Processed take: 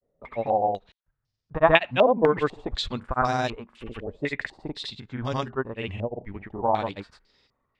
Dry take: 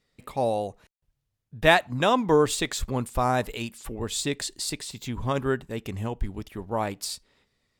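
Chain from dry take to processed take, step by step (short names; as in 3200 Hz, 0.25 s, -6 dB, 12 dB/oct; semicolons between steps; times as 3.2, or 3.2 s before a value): grains, pitch spread up and down by 0 st; stepped low-pass 4 Hz 600–5100 Hz; gain -1 dB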